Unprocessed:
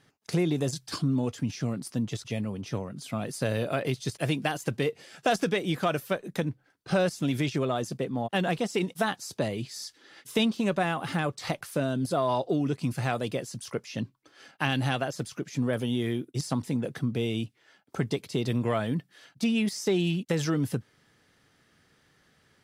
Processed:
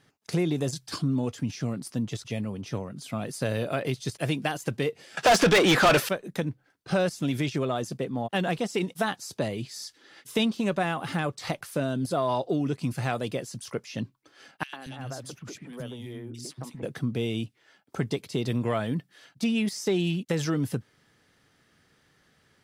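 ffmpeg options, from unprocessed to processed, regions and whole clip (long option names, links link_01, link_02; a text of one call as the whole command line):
ffmpeg -i in.wav -filter_complex "[0:a]asettb=1/sr,asplit=3[link_01][link_02][link_03];[link_01]atrim=end=5.174[link_04];[link_02]atrim=start=5.17:end=6.09,asetpts=PTS-STARTPTS,afade=type=in:duration=0.004:curve=qsin,afade=type=out:start_time=0.916:duration=0.004:curve=qsin,highshelf=frequency=8800:gain=-9.5,asplit=2[link_05][link_06];[link_06]highpass=frequency=720:poles=1,volume=30dB,asoftclip=type=tanh:threshold=-11dB[link_07];[link_05][link_07]amix=inputs=2:normalize=0,lowpass=frequency=5400:poles=1,volume=-6dB[link_08];[link_03]atrim=start=6.086[link_09];[link_04][link_08]acrossfade=duration=0.004:curve1=hsin:curve2=qsin[link_10];[link_10][link_09]acrossfade=duration=0.004:curve1=qsin:curve2=hsin,asettb=1/sr,asplit=3[link_11][link_12][link_13];[link_11]atrim=end=14.634[link_14];[link_12]atrim=start=14.63:end=16.83,asetpts=PTS-STARTPTS,afade=type=in:duration=0.004:curve=qsin,afade=type=out:start_time=2.196:duration=0.004:curve=qsin,acompressor=threshold=-33dB:ratio=5:attack=3.2:release=140:knee=1:detection=peak,acrossover=split=240|2000[link_15][link_16][link_17];[link_16]adelay=100[link_18];[link_15]adelay=230[link_19];[link_19][link_18][link_17]amix=inputs=3:normalize=0,atrim=end_sample=97020[link_20];[link_13]atrim=start=16.826[link_21];[link_14][link_20]acrossfade=duration=0.004:curve1=hsin:curve2=qsin[link_22];[link_22][link_21]acrossfade=duration=0.004:curve1=qsin:curve2=hsin" out.wav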